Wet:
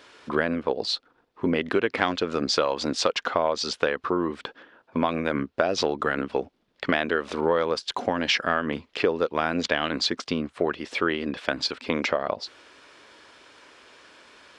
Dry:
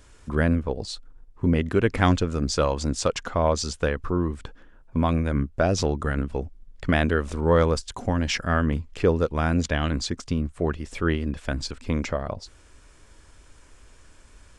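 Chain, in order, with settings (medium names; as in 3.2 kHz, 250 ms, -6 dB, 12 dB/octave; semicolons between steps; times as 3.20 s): high-pass 350 Hz 12 dB/octave; resonant high shelf 5.7 kHz -11 dB, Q 1.5; compression 5:1, threshold -27 dBFS, peak gain reduction 11 dB; trim +7.5 dB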